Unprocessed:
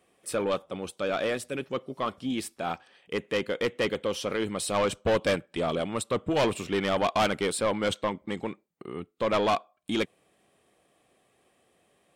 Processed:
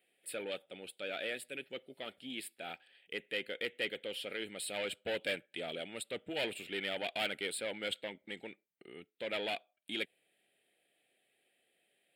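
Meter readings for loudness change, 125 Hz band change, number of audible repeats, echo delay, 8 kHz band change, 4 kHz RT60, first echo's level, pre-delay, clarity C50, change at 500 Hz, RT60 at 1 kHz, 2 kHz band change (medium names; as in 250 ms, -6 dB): -10.5 dB, -20.5 dB, no echo, no echo, -9.5 dB, no reverb, no echo, no reverb, no reverb, -13.0 dB, no reverb, -5.5 dB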